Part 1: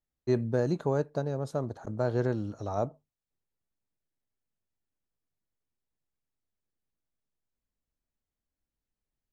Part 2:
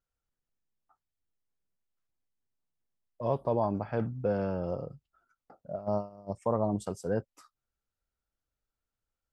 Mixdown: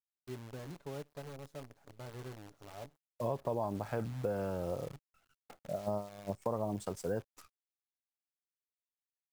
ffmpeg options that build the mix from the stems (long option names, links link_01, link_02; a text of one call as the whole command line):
ffmpeg -i stem1.wav -i stem2.wav -filter_complex "[0:a]aecho=1:1:7.1:0.61,volume=-19dB[link_01];[1:a]adynamicequalizer=threshold=0.00562:dfrequency=190:dqfactor=1.1:tfrequency=190:tqfactor=1.1:attack=5:release=100:ratio=0.375:range=2:mode=cutabove:tftype=bell,volume=1dB[link_02];[link_01][link_02]amix=inputs=2:normalize=0,acrusher=bits=9:dc=4:mix=0:aa=0.000001,acompressor=threshold=-33dB:ratio=3" out.wav